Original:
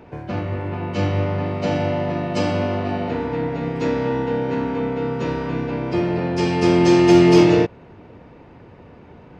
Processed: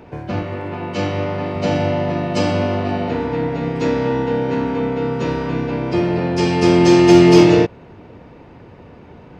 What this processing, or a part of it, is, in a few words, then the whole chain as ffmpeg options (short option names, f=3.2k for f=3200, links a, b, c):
exciter from parts: -filter_complex "[0:a]asplit=2[a][b];[b]highpass=2.5k,asoftclip=type=tanh:threshold=-24.5dB,volume=-11dB[c];[a][c]amix=inputs=2:normalize=0,asettb=1/sr,asplit=3[d][e][f];[d]atrim=end=0.424[g];[e]atrim=start=0.42:end=1.56,asetpts=PTS-STARTPTS,afade=t=in:d=0.004:c=qsin,afade=t=out:st=1.136:d=0.004:c=qsin,highpass=f=200:p=1[h];[f]atrim=start=1.556[i];[g][h]acrossfade=d=0.004:c1=hsin:c2=qsin[j];[j][i]acrossfade=d=0.004:c1=qsin:c2=hsin,volume=3dB"